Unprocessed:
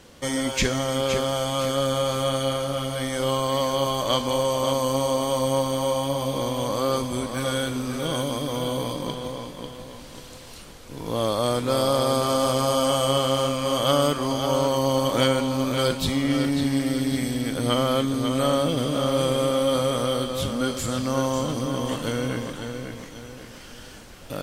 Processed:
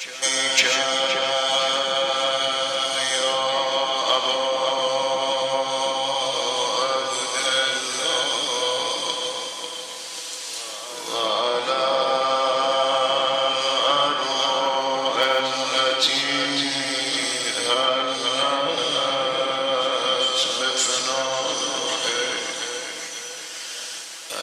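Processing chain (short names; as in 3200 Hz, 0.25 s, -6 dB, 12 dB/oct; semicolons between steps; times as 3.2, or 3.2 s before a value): octaver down 1 oct, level +3 dB; HPF 420 Hz 12 dB/oct; treble ducked by the level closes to 2200 Hz, closed at -20 dBFS; Chebyshev low-pass 7100 Hz, order 2; comb 6.1 ms, depth 45%; added harmonics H 5 -29 dB, 6 -42 dB, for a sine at -11 dBFS; tilt +4 dB/oct; reverse echo 0.568 s -15.5 dB; non-linear reverb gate 0.17 s rising, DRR 5 dB; gain +3 dB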